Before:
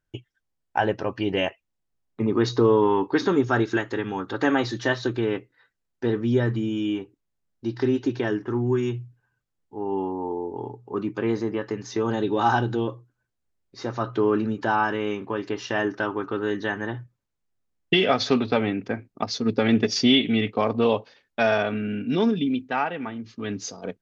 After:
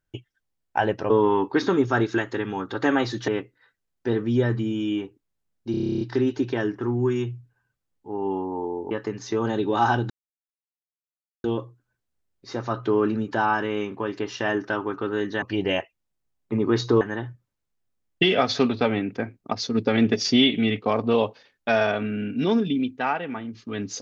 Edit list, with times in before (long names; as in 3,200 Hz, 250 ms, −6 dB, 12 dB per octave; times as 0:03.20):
0:01.10–0:02.69: move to 0:16.72
0:04.87–0:05.25: remove
0:07.68: stutter 0.03 s, 11 plays
0:10.58–0:11.55: remove
0:12.74: splice in silence 1.34 s